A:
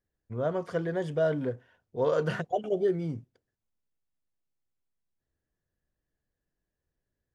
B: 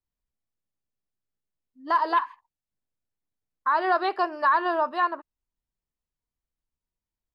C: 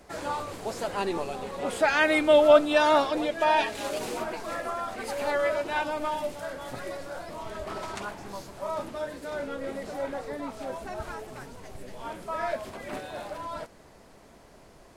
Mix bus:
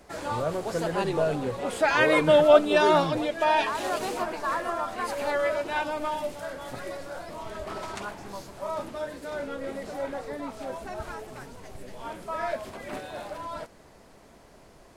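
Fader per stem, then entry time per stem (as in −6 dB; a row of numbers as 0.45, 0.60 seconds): 0.0, −9.0, 0.0 decibels; 0.00, 0.00, 0.00 seconds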